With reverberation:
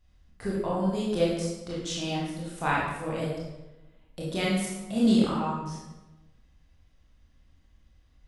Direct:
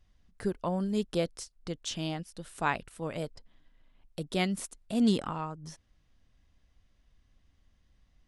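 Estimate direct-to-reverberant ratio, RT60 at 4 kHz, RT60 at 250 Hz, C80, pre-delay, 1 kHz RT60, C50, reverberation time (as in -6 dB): -6.0 dB, 0.75 s, 1.3 s, 3.0 dB, 21 ms, 1.0 s, -0.5 dB, 1.1 s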